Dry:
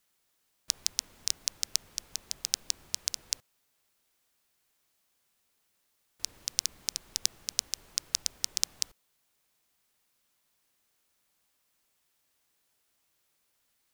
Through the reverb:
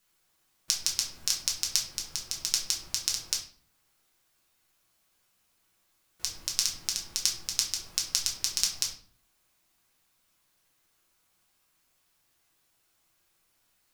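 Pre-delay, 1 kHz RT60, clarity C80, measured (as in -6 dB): 5 ms, 0.45 s, 12.5 dB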